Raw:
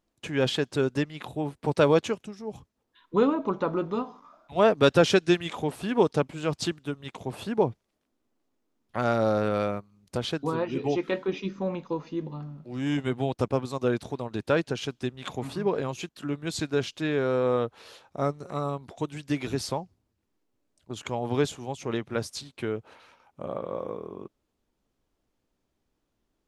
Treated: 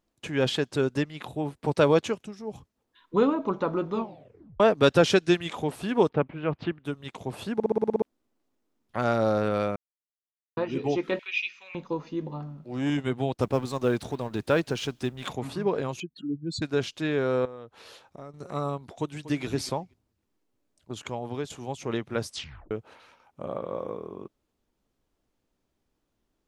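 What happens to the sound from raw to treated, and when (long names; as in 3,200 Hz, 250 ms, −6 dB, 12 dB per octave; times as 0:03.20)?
0:03.95: tape stop 0.65 s
0:06.09–0:06.85: low-pass filter 2,600 Hz 24 dB per octave
0:07.54: stutter in place 0.06 s, 8 plays
0:09.76–0:10.57: silence
0:11.19–0:11.75: high-pass with resonance 2,500 Hz, resonance Q 6.7
0:12.26–0:12.90: dynamic equaliser 680 Hz, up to +7 dB, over −48 dBFS, Q 0.88
0:13.42–0:15.33: mu-law and A-law mismatch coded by mu
0:16.00–0:16.62: expanding power law on the bin magnitudes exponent 2.7
0:17.45–0:18.34: downward compressor 4 to 1, threshold −41 dBFS
0:18.99–0:19.45: delay throw 240 ms, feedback 10%, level −14.5 dB
0:20.92–0:21.50: fade out, to −11.5 dB
0:22.29: tape stop 0.42 s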